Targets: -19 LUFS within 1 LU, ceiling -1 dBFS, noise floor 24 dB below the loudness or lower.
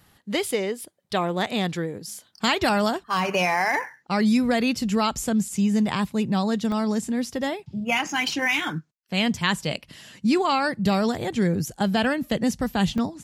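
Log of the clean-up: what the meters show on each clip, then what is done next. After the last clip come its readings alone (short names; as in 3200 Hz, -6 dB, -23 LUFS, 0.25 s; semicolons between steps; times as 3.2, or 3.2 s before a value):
dropouts 2; longest dropout 1.5 ms; loudness -24.0 LUFS; peak -8.0 dBFS; loudness target -19.0 LUFS
-> interpolate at 6.72/12.98, 1.5 ms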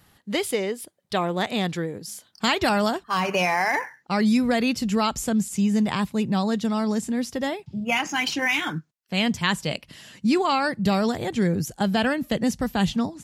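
dropouts 0; loudness -24.0 LUFS; peak -8.0 dBFS; loudness target -19.0 LUFS
-> gain +5 dB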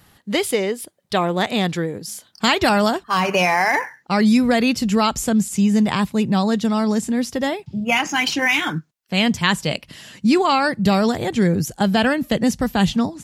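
loudness -19.0 LUFS; peak -3.0 dBFS; noise floor -59 dBFS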